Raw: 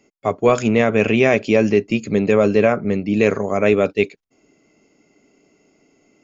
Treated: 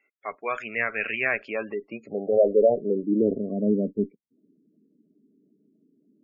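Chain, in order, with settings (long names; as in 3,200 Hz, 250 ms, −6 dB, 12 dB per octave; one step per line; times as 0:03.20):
band-pass filter sweep 1,800 Hz → 220 Hz, 0:01.19–0:03.58
harmonic generator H 4 −25 dB, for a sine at −9.5 dBFS
gate on every frequency bin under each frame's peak −20 dB strong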